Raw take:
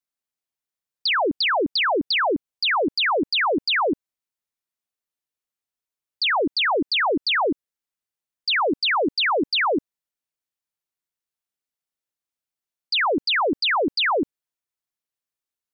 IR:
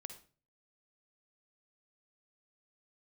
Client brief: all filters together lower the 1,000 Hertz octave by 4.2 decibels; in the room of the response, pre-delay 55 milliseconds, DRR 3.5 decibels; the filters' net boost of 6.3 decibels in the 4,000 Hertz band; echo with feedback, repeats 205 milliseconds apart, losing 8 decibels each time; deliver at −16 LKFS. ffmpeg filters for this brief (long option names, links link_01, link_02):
-filter_complex "[0:a]equalizer=frequency=1000:width_type=o:gain=-6,equalizer=frequency=4000:width_type=o:gain=8,aecho=1:1:205|410|615|820|1025:0.398|0.159|0.0637|0.0255|0.0102,asplit=2[link_01][link_02];[1:a]atrim=start_sample=2205,adelay=55[link_03];[link_02][link_03]afir=irnorm=-1:irlink=0,volume=1dB[link_04];[link_01][link_04]amix=inputs=2:normalize=0"